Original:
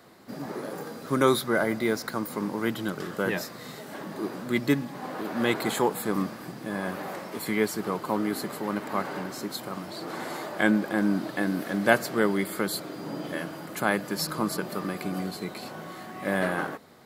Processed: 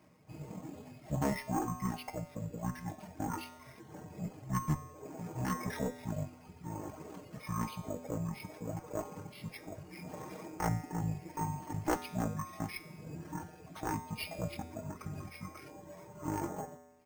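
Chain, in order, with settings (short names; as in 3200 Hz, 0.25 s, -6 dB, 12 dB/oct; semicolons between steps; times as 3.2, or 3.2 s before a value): one-sided fold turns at -17 dBFS; reverb removal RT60 1.2 s; HPF 58 Hz 6 dB/oct; comb 3.4 ms, depth 52%; pitch shift -11 st; tube stage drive 15 dB, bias 0.55; resonator 83 Hz, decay 1.1 s, harmonics odd, mix 80%; on a send at -15 dB: reverb RT60 0.25 s, pre-delay 3 ms; on the sum: careless resampling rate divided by 6×, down filtered, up hold; gain +6.5 dB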